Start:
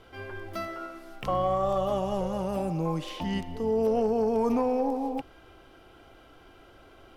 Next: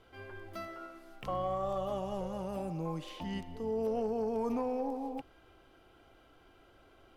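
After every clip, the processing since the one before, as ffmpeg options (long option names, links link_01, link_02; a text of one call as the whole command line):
ffmpeg -i in.wav -af "bandreject=frequency=5500:width=29,volume=-8dB" out.wav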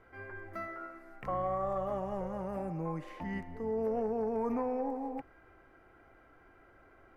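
ffmpeg -i in.wav -af "highshelf=frequency=2500:width_type=q:width=3:gain=-8.5" out.wav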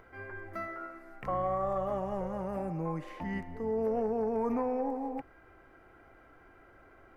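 ffmpeg -i in.wav -af "acompressor=mode=upward:threshold=-56dB:ratio=2.5,volume=2dB" out.wav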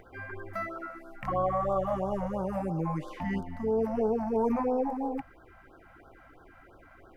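ffmpeg -i in.wav -af "afftfilt=real='re*(1-between(b*sr/1024,350*pow(2300/350,0.5+0.5*sin(2*PI*3*pts/sr))/1.41,350*pow(2300/350,0.5+0.5*sin(2*PI*3*pts/sr))*1.41))':imag='im*(1-between(b*sr/1024,350*pow(2300/350,0.5+0.5*sin(2*PI*3*pts/sr))/1.41,350*pow(2300/350,0.5+0.5*sin(2*PI*3*pts/sr))*1.41))':win_size=1024:overlap=0.75,volume=4.5dB" out.wav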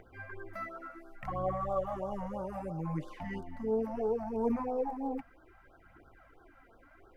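ffmpeg -i in.wav -af "aphaser=in_gain=1:out_gain=1:delay=4.5:decay=0.44:speed=0.67:type=triangular,volume=-6.5dB" out.wav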